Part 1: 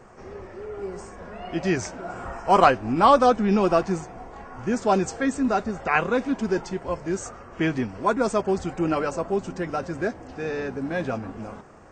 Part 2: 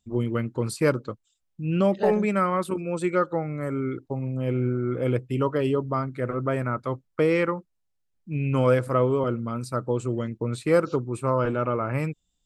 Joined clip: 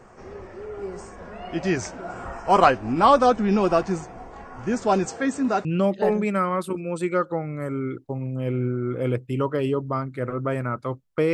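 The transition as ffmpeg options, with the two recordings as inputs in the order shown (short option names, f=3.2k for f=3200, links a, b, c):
-filter_complex "[0:a]asettb=1/sr,asplit=3[a][b][c];[a]atrim=end=5.054[d];[b]atrim=start=5.05:end=5.65,asetpts=PTS-STARTPTS,afade=t=in:d=0.004:c=qsin,afade=t=out:st=0.596:d=0.004:c=qsin,highpass=120[e];[c]atrim=start=5.646[f];[d][e]acrossfade=d=0.004:c1=hsin:c2=qsin[g];[g][f]acrossfade=d=0.004:c1=qsin:c2=hsin,apad=whole_dur=11.33,atrim=end=11.33,atrim=end=5.652[h];[1:a]atrim=start=1.658:end=7.34[i];[h][i]acrossfade=d=0.004:c1=hsin:c2=hsin"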